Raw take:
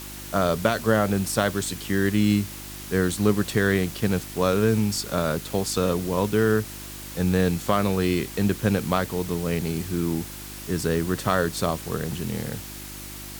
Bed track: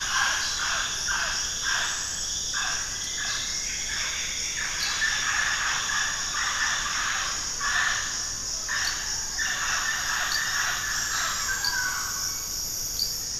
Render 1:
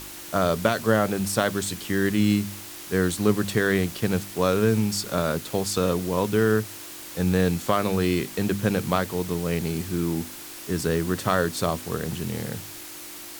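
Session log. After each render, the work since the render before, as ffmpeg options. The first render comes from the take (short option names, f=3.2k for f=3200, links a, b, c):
-af "bandreject=f=50:t=h:w=4,bandreject=f=100:t=h:w=4,bandreject=f=150:t=h:w=4,bandreject=f=200:t=h:w=4,bandreject=f=250:t=h:w=4"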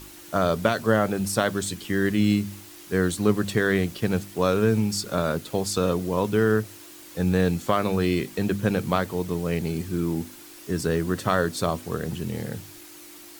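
-af "afftdn=nr=7:nf=-40"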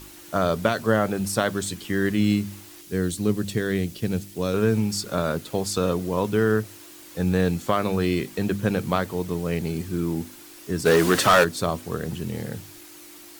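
-filter_complex "[0:a]asettb=1/sr,asplit=3[a][b][c];[a]atrim=end=2.814[d];[b]atrim=start=2.81:end=4.54,asetpts=PTS-STARTPTS,afade=t=in:d=0.004:c=qsin,afade=t=out:st=1.726:d=0.004:c=qsin,equalizer=f=1.1k:w=0.64:g=-9.5[e];[c]atrim=start=4.536[f];[d][e]acrossfade=d=0.004:c1=hsin:c2=qsin[g];[g][f]acrossfade=d=0.004:c1=qsin:c2=hsin,asplit=3[h][i][j];[h]afade=t=out:st=10.85:d=0.02[k];[i]asplit=2[l][m];[m]highpass=f=720:p=1,volume=23dB,asoftclip=type=tanh:threshold=-6.5dB[n];[l][n]amix=inputs=2:normalize=0,lowpass=f=8k:p=1,volume=-6dB,afade=t=in:st=10.85:d=0.02,afade=t=out:st=11.43:d=0.02[o];[j]afade=t=in:st=11.43:d=0.02[p];[k][o][p]amix=inputs=3:normalize=0"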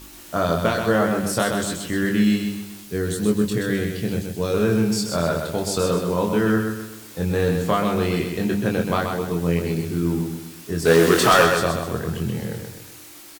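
-filter_complex "[0:a]asplit=2[a][b];[b]adelay=24,volume=-4dB[c];[a][c]amix=inputs=2:normalize=0,asplit=2[d][e];[e]aecho=0:1:128|256|384|512|640:0.531|0.223|0.0936|0.0393|0.0165[f];[d][f]amix=inputs=2:normalize=0"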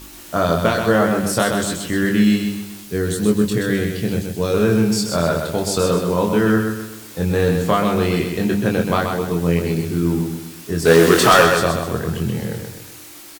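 -af "volume=3.5dB,alimiter=limit=-1dB:level=0:latency=1"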